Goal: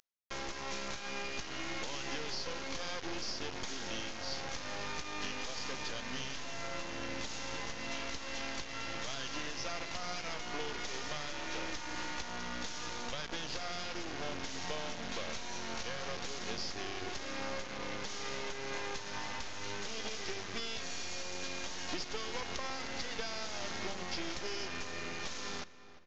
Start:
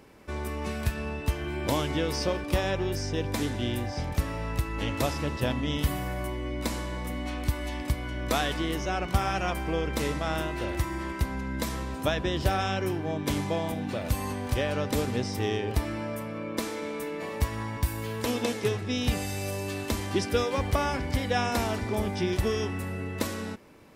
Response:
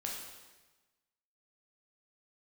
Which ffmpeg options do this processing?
-filter_complex "[0:a]highpass=f=550:p=1,aemphasis=mode=production:type=75kf,alimiter=limit=-17.5dB:level=0:latency=1:release=244,acompressor=threshold=-33dB:ratio=8,acrusher=bits=4:dc=4:mix=0:aa=0.000001,asplit=2[a][b];[b]adelay=323,lowpass=f=3.2k:p=1,volume=-16dB,asplit=2[c][d];[d]adelay=323,lowpass=f=3.2k:p=1,volume=0.54,asplit=2[e][f];[f]adelay=323,lowpass=f=3.2k:p=1,volume=0.54,asplit=2[g][h];[h]adelay=323,lowpass=f=3.2k:p=1,volume=0.54,asplit=2[i][j];[j]adelay=323,lowpass=f=3.2k:p=1,volume=0.54[k];[a][c][e][g][i][k]amix=inputs=6:normalize=0,asplit=2[l][m];[1:a]atrim=start_sample=2205[n];[m][n]afir=irnorm=-1:irlink=0,volume=-21.5dB[o];[l][o]amix=inputs=2:normalize=0,aresample=16000,aresample=44100,asetrate=40517,aresample=44100,volume=1.5dB"

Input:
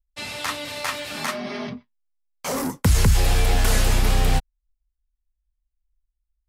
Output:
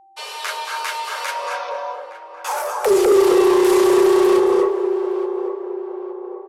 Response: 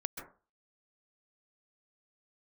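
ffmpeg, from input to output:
-filter_complex "[0:a]equalizer=f=610:w=1.5:g=6,asplit=2[a][b];[b]adelay=865,lowpass=f=980:p=1,volume=-11dB,asplit=2[c][d];[d]adelay=865,lowpass=f=980:p=1,volume=0.52,asplit=2[e][f];[f]adelay=865,lowpass=f=980:p=1,volume=0.52,asplit=2[g][h];[h]adelay=865,lowpass=f=980:p=1,volume=0.52,asplit=2[i][j];[j]adelay=865,lowpass=f=980:p=1,volume=0.52,asplit=2[k][l];[l]adelay=865,lowpass=f=980:p=1,volume=0.52[m];[a][c][e][g][i][k][m]amix=inputs=7:normalize=0[n];[1:a]atrim=start_sample=2205,asetrate=24696,aresample=44100[o];[n][o]afir=irnorm=-1:irlink=0,afreqshift=330,adynamicequalizer=threshold=0.0398:dfrequency=400:dqfactor=6.8:tfrequency=400:tqfactor=6.8:attack=5:release=100:ratio=0.375:range=3.5:mode=boostabove:tftype=bell,acontrast=57,aeval=exprs='val(0)+0.01*sin(2*PI*780*n/s)':c=same,volume=-8dB"

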